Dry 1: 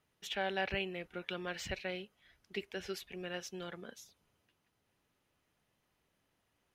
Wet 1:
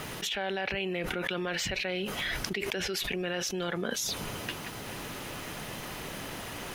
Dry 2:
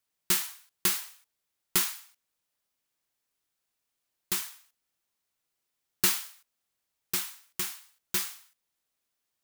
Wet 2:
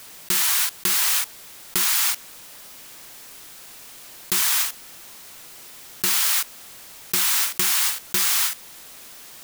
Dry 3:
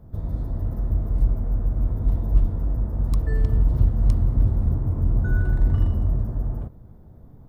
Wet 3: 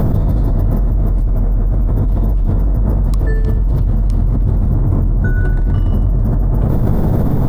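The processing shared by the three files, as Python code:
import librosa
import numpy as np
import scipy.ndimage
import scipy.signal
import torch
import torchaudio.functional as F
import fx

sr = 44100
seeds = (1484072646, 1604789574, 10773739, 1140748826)

y = fx.peak_eq(x, sr, hz=73.0, db=-8.5, octaves=0.52)
y = fx.env_flatten(y, sr, amount_pct=100)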